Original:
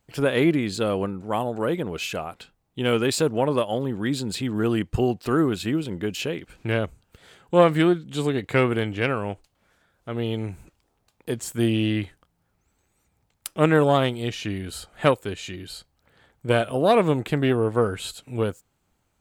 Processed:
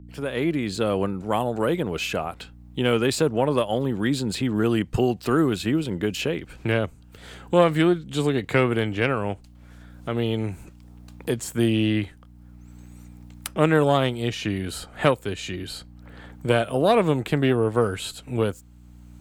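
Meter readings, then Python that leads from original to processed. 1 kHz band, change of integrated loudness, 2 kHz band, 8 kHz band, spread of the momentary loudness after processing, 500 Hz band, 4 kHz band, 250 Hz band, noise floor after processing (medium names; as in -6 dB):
0.0 dB, 0.0 dB, +0.5 dB, 0.0 dB, 13 LU, 0.0 dB, +1.0 dB, +0.5 dB, -48 dBFS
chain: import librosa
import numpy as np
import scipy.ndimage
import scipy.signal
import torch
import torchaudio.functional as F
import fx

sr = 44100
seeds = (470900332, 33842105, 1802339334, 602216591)

y = fx.fade_in_head(x, sr, length_s=1.02)
y = fx.add_hum(y, sr, base_hz=60, snr_db=28)
y = fx.band_squash(y, sr, depth_pct=40)
y = y * 10.0 ** (1.0 / 20.0)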